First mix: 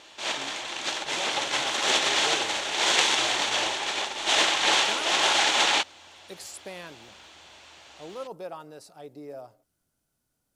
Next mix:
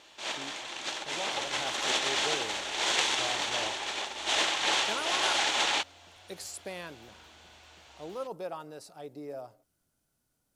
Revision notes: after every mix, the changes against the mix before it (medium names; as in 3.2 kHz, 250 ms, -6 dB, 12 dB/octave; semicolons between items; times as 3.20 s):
first sound -5.5 dB; second sound +4.5 dB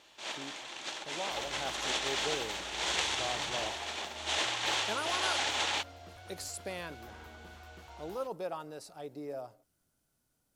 first sound -4.5 dB; second sound +10.0 dB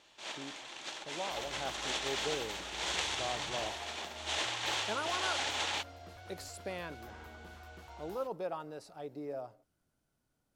speech: add treble shelf 4.9 kHz -10.5 dB; first sound -3.0 dB